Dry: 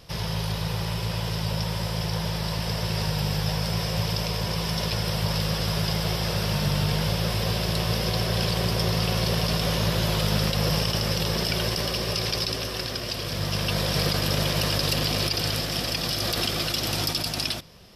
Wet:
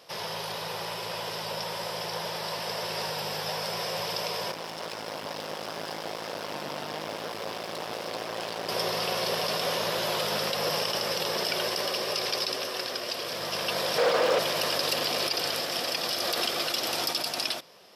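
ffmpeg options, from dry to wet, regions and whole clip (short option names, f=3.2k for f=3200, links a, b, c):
-filter_complex "[0:a]asettb=1/sr,asplit=3[a][b][c];[a]atrim=end=4.514[d];[b]atrim=start=4.51:end=8.69,asetpts=PTS-STARTPTS,afade=t=in:d=0.004:c=qsin,afade=t=out:st=4.176:d=0.004:c=qsin,highshelf=f=3.8k:g=-8,aeval=exprs='max(val(0),0)':c=same[e];[c]atrim=start=8.686[f];[d][e]acrossfade=d=0.004:c1=hsin:c2=qsin[g];[g][f]acrossfade=d=0.004:c1=qsin:c2=hsin,asettb=1/sr,asplit=3[h][i][j];[h]atrim=end=13.984[k];[i]atrim=start=13.98:end=14.39,asetpts=PTS-STARTPTS,afade=t=in:d=0.004:c=qsin,afade=t=out:st=0.406:d=0.004:c=qsin,equalizer=f=490:w=5:g=10,asplit=2[l][m];[m]highpass=f=720:p=1,volume=19dB,asoftclip=type=tanh:threshold=-9.5dB[n];[l][n]amix=inputs=2:normalize=0,lowpass=f=1.1k:p=1,volume=-6dB,aeval=exprs='0.15*(abs(mod(val(0)/0.15+3,4)-2)-1)':c=same[o];[j]atrim=start=14.386[p];[k][o]acrossfade=d=0.004:c1=hsin:c2=qsin[q];[q][p]acrossfade=d=0.004:c1=qsin:c2=hsin,highpass=540,tiltshelf=f=970:g=4,volume=1.5dB"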